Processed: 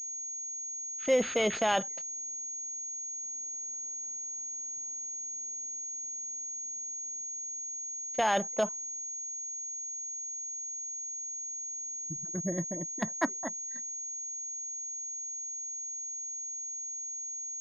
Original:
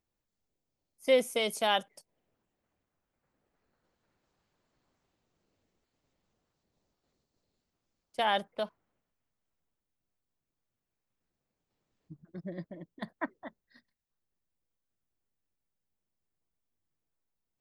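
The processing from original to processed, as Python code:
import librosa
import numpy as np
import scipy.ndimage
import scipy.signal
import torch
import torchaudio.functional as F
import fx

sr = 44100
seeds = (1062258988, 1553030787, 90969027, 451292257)

p1 = fx.over_compress(x, sr, threshold_db=-31.0, ratio=-0.5)
p2 = x + (p1 * 10.0 ** (0.5 / 20.0))
p3 = fx.pwm(p2, sr, carrier_hz=6600.0)
y = p3 * 10.0 ** (-1.5 / 20.0)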